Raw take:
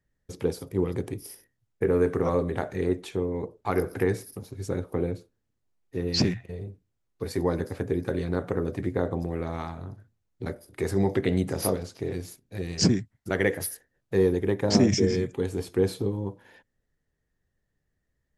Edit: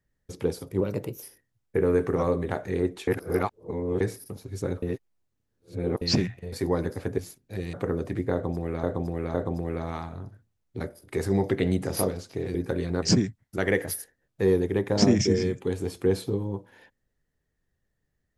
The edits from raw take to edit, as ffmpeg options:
-filter_complex "[0:a]asplit=14[s0][s1][s2][s3][s4][s5][s6][s7][s8][s9][s10][s11][s12][s13];[s0]atrim=end=0.814[s14];[s1]atrim=start=0.81:end=1.29,asetpts=PTS-STARTPTS,asetrate=51156,aresample=44100,atrim=end_sample=18248,asetpts=PTS-STARTPTS[s15];[s2]atrim=start=1.286:end=3.142[s16];[s3]atrim=start=3.138:end=4.072,asetpts=PTS-STARTPTS,areverse[s17];[s4]atrim=start=4.068:end=4.892[s18];[s5]atrim=start=4.888:end=6.082,asetpts=PTS-STARTPTS,areverse[s19];[s6]atrim=start=6.078:end=6.592[s20];[s7]atrim=start=7.268:end=7.932[s21];[s8]atrim=start=12.198:end=12.752[s22];[s9]atrim=start=8.408:end=9.512[s23];[s10]atrim=start=8.998:end=9.512[s24];[s11]atrim=start=8.998:end=12.202[s25];[s12]atrim=start=7.928:end=8.412[s26];[s13]atrim=start=12.748[s27];[s14][s15]acrossfade=d=0.004:c1=hsin:c2=hsin[s28];[s28][s16]acrossfade=d=0.004:c1=hsin:c2=hsin[s29];[s29][s17]acrossfade=d=0.004:c1=hsin:c2=hsin[s30];[s30][s18]acrossfade=d=0.004:c1=hsin:c2=hsin[s31];[s31][s19]acrossfade=d=0.004:c1=hsin:c2=hsin[s32];[s32][s20]acrossfade=d=0.004:c1=hsin:c2=hsin[s33];[s33][s21]acrossfade=d=0.004:c1=hsin:c2=hsin[s34];[s34][s22]acrossfade=d=0.004:c1=hsin:c2=hsin[s35];[s35][s23]acrossfade=d=0.004:c1=hsin:c2=hsin[s36];[s36][s24]acrossfade=d=0.004:c1=hsin:c2=hsin[s37];[s37][s25]acrossfade=d=0.004:c1=hsin:c2=hsin[s38];[s38][s26]acrossfade=d=0.004:c1=hsin:c2=hsin[s39];[s39][s27]acrossfade=d=0.004:c1=hsin:c2=hsin"

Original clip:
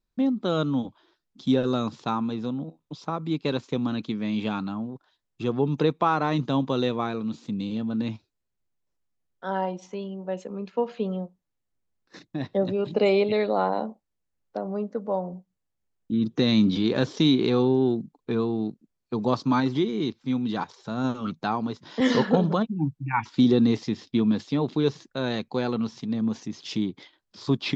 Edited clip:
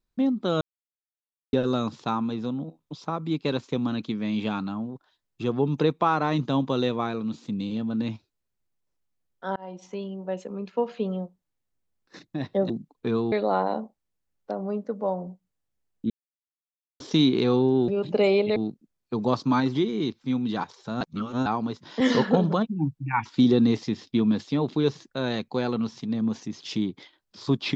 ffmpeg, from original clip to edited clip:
-filter_complex "[0:a]asplit=12[s0][s1][s2][s3][s4][s5][s6][s7][s8][s9][s10][s11];[s0]atrim=end=0.61,asetpts=PTS-STARTPTS,afade=t=out:st=0.606:d=0.004:c=hsin[s12];[s1]atrim=start=0.61:end=1.53,asetpts=PTS-STARTPTS,volume=0[s13];[s2]atrim=start=1.53:end=9.56,asetpts=PTS-STARTPTS,afade=t=in:d=0.004:c=hsin,afade=t=out:st=8.026:d=0.004:c=hsin[s14];[s3]atrim=start=9.56:end=12.702,asetpts=PTS-STARTPTS,afade=t=in:d=0.34[s15];[s4]atrim=start=17.938:end=18.562[s16];[s5]atrim=start=13.378:end=16.16,asetpts=PTS-STARTPTS,afade=t=out:st=2.778:d=0.004:c=hsin[s17];[s6]atrim=start=16.16:end=17.06,asetpts=PTS-STARTPTS,volume=0[s18];[s7]atrim=start=17.06:end=17.942,asetpts=PTS-STARTPTS,afade=t=in:d=0.004:c=hsin[s19];[s8]atrim=start=12.698:end=13.382[s20];[s9]atrim=start=18.558:end=21.012[s21];[s10]atrim=start=21.008:end=21.462,asetpts=PTS-STARTPTS,areverse[s22];[s11]atrim=start=21.458[s23];[s12][s13][s14][s15]concat=n=4:v=0:a=1[s24];[s24][s16]acrossfade=d=0.004:c1=hsin:c2=hsin[s25];[s17][s18][s19]concat=n=3:v=0:a=1[s26];[s25][s26]acrossfade=d=0.004:c1=hsin:c2=hsin[s27];[s27][s20]acrossfade=d=0.004:c1=hsin:c2=hsin[s28];[s28][s21]acrossfade=d=0.004:c1=hsin:c2=hsin[s29];[s29][s22]acrossfade=d=0.004:c1=hsin:c2=hsin[s30];[s30][s23]acrossfade=d=0.004:c1=hsin:c2=hsin"

